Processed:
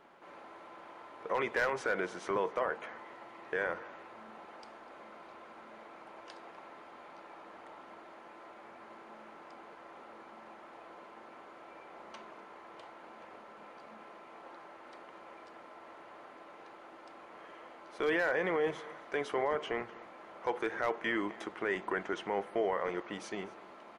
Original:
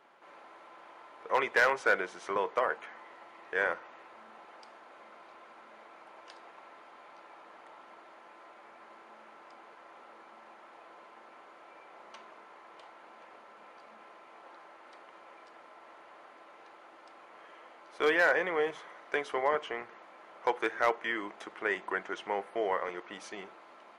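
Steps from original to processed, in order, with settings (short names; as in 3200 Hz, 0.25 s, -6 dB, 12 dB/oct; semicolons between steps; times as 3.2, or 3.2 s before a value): low shelf 320 Hz +11.5 dB; limiter -22 dBFS, peak gain reduction 9.5 dB; on a send: echo 0.248 s -21 dB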